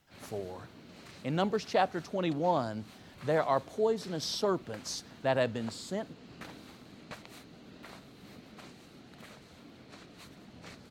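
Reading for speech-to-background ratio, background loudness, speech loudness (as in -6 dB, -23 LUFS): 19.0 dB, -51.5 LUFS, -32.5 LUFS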